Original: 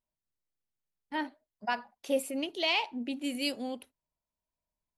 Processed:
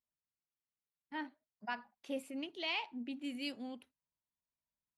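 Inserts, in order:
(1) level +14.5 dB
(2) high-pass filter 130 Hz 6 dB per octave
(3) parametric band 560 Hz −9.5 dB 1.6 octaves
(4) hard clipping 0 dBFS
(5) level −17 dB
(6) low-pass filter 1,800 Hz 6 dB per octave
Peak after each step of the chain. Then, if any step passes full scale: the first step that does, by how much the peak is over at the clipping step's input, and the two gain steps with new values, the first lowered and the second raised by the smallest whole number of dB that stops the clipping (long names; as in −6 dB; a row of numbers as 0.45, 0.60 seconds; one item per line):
−2.0, −2.0, −3.5, −3.5, −20.5, −25.5 dBFS
no step passes full scale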